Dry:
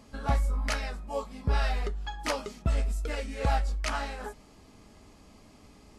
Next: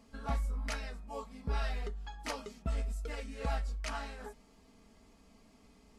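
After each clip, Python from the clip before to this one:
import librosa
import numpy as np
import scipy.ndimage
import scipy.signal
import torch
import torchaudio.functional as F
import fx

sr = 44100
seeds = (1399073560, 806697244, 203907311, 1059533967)

y = x + 0.47 * np.pad(x, (int(4.4 * sr / 1000.0), 0))[:len(x)]
y = y * librosa.db_to_amplitude(-8.5)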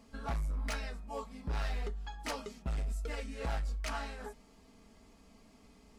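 y = np.clip(10.0 ** (32.5 / 20.0) * x, -1.0, 1.0) / 10.0 ** (32.5 / 20.0)
y = y * librosa.db_to_amplitude(1.5)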